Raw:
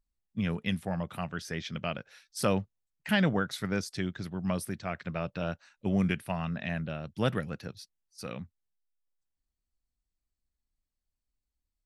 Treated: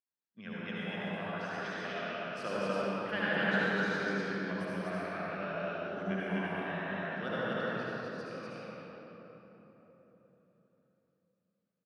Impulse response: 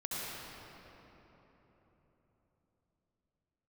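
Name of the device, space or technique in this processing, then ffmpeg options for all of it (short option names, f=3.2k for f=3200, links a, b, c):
station announcement: -filter_complex "[0:a]highpass=300,lowpass=4.6k,equalizer=f=1.6k:t=o:w=0.29:g=7.5,aecho=1:1:72.89|247.8:0.355|0.891[a];[1:a]atrim=start_sample=2205[b];[a][b]afir=irnorm=-1:irlink=0,asettb=1/sr,asplit=3[c][d][e];[c]atrim=end=5.894[f];[d]atrim=start=5.89:end=7.75,asetpts=PTS-STARTPTS,afade=t=in:d=0.004:c=qsin,afade=t=out:st=1.856:d=0.004:c=qsin,bandreject=f=2.5k:w=9.4[g];[e]atrim=start=7.746[h];[f][g]acrossfade=d=0.004:c1=hsin:c2=qsin[i];[i][h]acrossfade=d=0.004:c1=qsin:c2=hsin,volume=-7.5dB"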